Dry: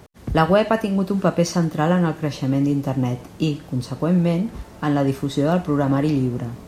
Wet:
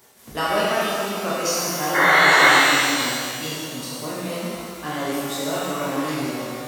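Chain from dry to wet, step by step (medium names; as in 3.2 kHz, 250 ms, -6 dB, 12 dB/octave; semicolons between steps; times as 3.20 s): painted sound noise, 1.94–2.56 s, 260–2200 Hz -13 dBFS; RIAA curve recording; pitch-shifted reverb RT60 2.1 s, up +12 st, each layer -8 dB, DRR -8.5 dB; trim -10.5 dB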